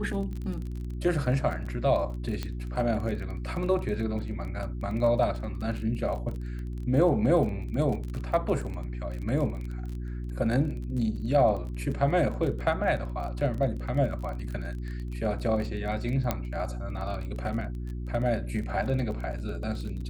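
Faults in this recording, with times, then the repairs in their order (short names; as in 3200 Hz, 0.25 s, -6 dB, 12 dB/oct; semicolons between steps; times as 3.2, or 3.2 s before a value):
crackle 25/s -34 dBFS
hum 60 Hz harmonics 6 -34 dBFS
2.43 pop -18 dBFS
16.31 pop -12 dBFS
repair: de-click; de-hum 60 Hz, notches 6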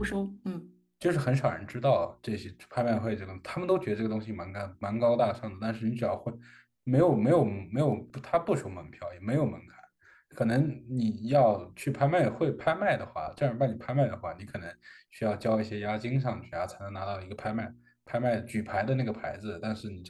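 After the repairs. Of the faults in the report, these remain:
16.31 pop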